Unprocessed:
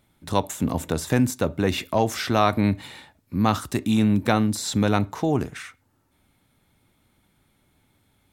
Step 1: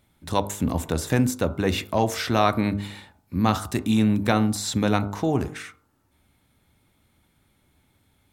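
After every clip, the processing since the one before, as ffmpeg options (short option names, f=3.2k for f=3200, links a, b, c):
-af "equalizer=f=73:w=3.9:g=6.5,bandreject=f=50.55:t=h:w=4,bandreject=f=101.1:t=h:w=4,bandreject=f=151.65:t=h:w=4,bandreject=f=202.2:t=h:w=4,bandreject=f=252.75:t=h:w=4,bandreject=f=303.3:t=h:w=4,bandreject=f=353.85:t=h:w=4,bandreject=f=404.4:t=h:w=4,bandreject=f=454.95:t=h:w=4,bandreject=f=505.5:t=h:w=4,bandreject=f=556.05:t=h:w=4,bandreject=f=606.6:t=h:w=4,bandreject=f=657.15:t=h:w=4,bandreject=f=707.7:t=h:w=4,bandreject=f=758.25:t=h:w=4,bandreject=f=808.8:t=h:w=4,bandreject=f=859.35:t=h:w=4,bandreject=f=909.9:t=h:w=4,bandreject=f=960.45:t=h:w=4,bandreject=f=1.011k:t=h:w=4,bandreject=f=1.06155k:t=h:w=4,bandreject=f=1.1121k:t=h:w=4,bandreject=f=1.16265k:t=h:w=4,bandreject=f=1.2132k:t=h:w=4,bandreject=f=1.26375k:t=h:w=4,bandreject=f=1.3143k:t=h:w=4,bandreject=f=1.36485k:t=h:w=4,bandreject=f=1.4154k:t=h:w=4,bandreject=f=1.46595k:t=h:w=4,bandreject=f=1.5165k:t=h:w=4"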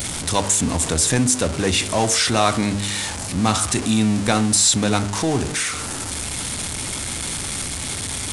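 -af "aeval=exprs='val(0)+0.5*0.0562*sgn(val(0))':c=same,aresample=22050,aresample=44100,aemphasis=mode=production:type=75kf"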